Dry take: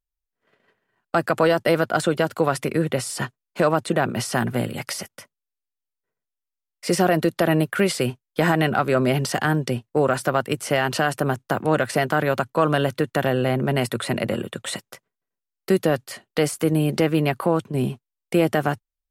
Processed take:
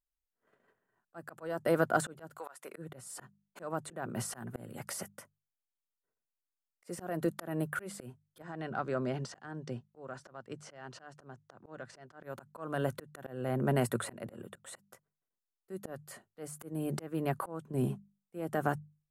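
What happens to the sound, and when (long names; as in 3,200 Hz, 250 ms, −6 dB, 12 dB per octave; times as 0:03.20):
0:02.37–0:02.77: high-pass filter 1,100 Hz → 520 Hz
0:08.42–0:12.23: transistor ladder low-pass 6,600 Hz, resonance 35%
whole clip: flat-topped bell 3,400 Hz −8.5 dB; mains-hum notches 50/100/150/200 Hz; volume swells 422 ms; level −6.5 dB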